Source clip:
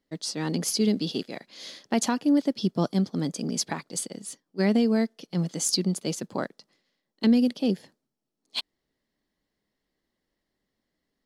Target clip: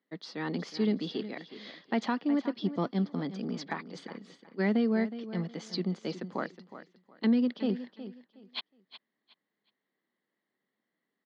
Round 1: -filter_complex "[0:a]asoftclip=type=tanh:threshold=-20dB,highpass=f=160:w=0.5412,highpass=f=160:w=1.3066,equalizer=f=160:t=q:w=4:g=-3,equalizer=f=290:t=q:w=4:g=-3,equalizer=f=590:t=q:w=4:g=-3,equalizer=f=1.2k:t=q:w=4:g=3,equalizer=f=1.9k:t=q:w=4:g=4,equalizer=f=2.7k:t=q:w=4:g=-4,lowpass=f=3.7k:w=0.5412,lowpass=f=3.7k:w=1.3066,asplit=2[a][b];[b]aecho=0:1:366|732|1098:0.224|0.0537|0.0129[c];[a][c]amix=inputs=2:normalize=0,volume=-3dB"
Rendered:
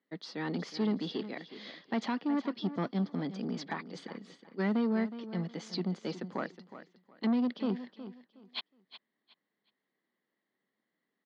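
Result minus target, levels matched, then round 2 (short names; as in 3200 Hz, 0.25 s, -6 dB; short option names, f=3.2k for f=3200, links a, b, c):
soft clip: distortion +14 dB
-filter_complex "[0:a]asoftclip=type=tanh:threshold=-10.5dB,highpass=f=160:w=0.5412,highpass=f=160:w=1.3066,equalizer=f=160:t=q:w=4:g=-3,equalizer=f=290:t=q:w=4:g=-3,equalizer=f=590:t=q:w=4:g=-3,equalizer=f=1.2k:t=q:w=4:g=3,equalizer=f=1.9k:t=q:w=4:g=4,equalizer=f=2.7k:t=q:w=4:g=-4,lowpass=f=3.7k:w=0.5412,lowpass=f=3.7k:w=1.3066,asplit=2[a][b];[b]aecho=0:1:366|732|1098:0.224|0.0537|0.0129[c];[a][c]amix=inputs=2:normalize=0,volume=-3dB"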